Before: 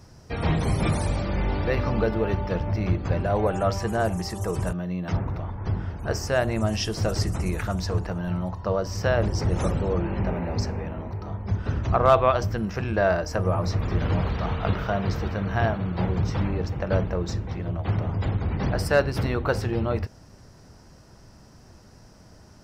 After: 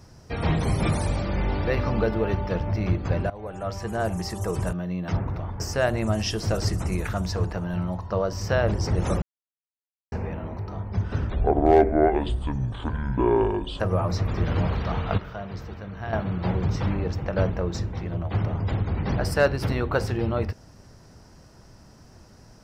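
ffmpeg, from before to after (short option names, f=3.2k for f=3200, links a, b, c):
-filter_complex "[0:a]asplit=9[a][b][c][d][e][f][g][h][i];[a]atrim=end=3.3,asetpts=PTS-STARTPTS,afade=t=out:st=3.296:d=0.004:c=hsin:silence=0.0944061[j];[b]atrim=start=3.3:end=5.602,asetpts=PTS-STARTPTS,afade=t=in:d=0.96:silence=0.0944061[k];[c]atrim=start=6.138:end=9.76,asetpts=PTS-STARTPTS,afade=t=out:st=3.618:d=0.004:c=hsin[l];[d]atrim=start=9.76:end=10.66,asetpts=PTS-STARTPTS,volume=0[m];[e]atrim=start=10.66:end=11.844,asetpts=PTS-STARTPTS,afade=t=in:d=0.004:c=hsin[n];[f]atrim=start=11.84:end=13.34,asetpts=PTS-STARTPTS,asetrate=26460,aresample=44100[o];[g]atrim=start=13.336:end=14.722[p];[h]atrim=start=14.718:end=15.672,asetpts=PTS-STARTPTS,volume=-9.5dB[q];[i]atrim=start=15.668[r];[j][k]concat=n=2:v=0:a=1[s];[l][m][n]concat=n=3:v=0:a=1[t];[s][t]acrossfade=d=0.004:c1=hsin:c2=hsin[u];[u][o]acrossfade=d=0.004:c1=hsin:c2=hsin[v];[v][p]acrossfade=d=0.004:c1=hsin:c2=hsin[w];[w][q]acrossfade=d=0.004:c1=hsin:c2=hsin[x];[x][r]acrossfade=d=0.004:c1=hsin:c2=hsin"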